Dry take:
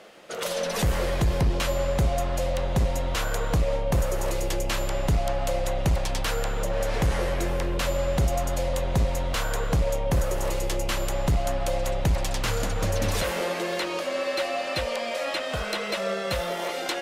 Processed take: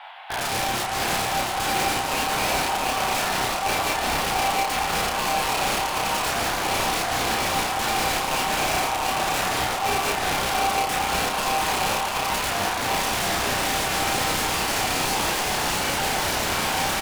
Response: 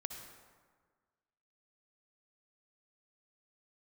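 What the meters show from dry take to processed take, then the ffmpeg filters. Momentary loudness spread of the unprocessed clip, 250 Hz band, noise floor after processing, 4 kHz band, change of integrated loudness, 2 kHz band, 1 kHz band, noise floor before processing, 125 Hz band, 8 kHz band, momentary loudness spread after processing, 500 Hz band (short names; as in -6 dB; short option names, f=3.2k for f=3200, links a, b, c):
3 LU, 0.0 dB, -27 dBFS, +8.5 dB, +4.0 dB, +8.5 dB, +10.5 dB, -31 dBFS, -8.0 dB, +9.0 dB, 1 LU, -2.0 dB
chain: -filter_complex "[0:a]aemphasis=mode=production:type=50fm,highpass=f=510:t=q:w=0.5412,highpass=f=510:t=q:w=1.307,lowpass=f=3.4k:t=q:w=0.5176,lowpass=f=3.4k:t=q:w=0.7071,lowpass=f=3.4k:t=q:w=1.932,afreqshift=230,acontrast=89,alimiter=limit=-16dB:level=0:latency=1:release=273,acrusher=bits=8:mode=log:mix=0:aa=0.000001,aeval=exprs='(mod(12.6*val(0)+1,2)-1)/12.6':c=same,highshelf=f=2.4k:g=-10,asplit=2[a][b];[b]adelay=32,volume=-3dB[c];[a][c]amix=inputs=2:normalize=0,aecho=1:1:689:0.668,asplit=2[d][e];[1:a]atrim=start_sample=2205,asetrate=25578,aresample=44100,highshelf=f=3.6k:g=9[f];[e][f]afir=irnorm=-1:irlink=0,volume=-2.5dB[g];[d][g]amix=inputs=2:normalize=0,volume=-2dB"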